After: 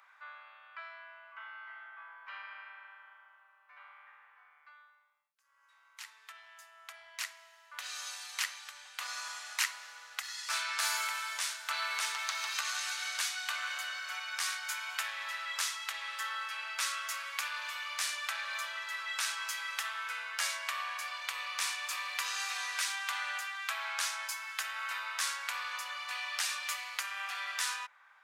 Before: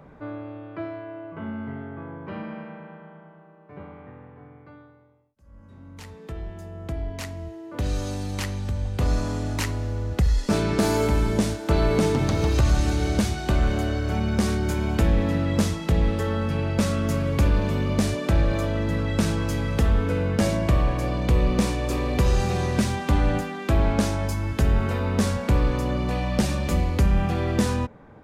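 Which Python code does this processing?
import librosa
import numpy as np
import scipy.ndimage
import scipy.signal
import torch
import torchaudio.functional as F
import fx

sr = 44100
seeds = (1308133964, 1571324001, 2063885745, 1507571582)

y = scipy.signal.sosfilt(scipy.signal.cheby2(4, 60, 360.0, 'highpass', fs=sr, output='sos'), x)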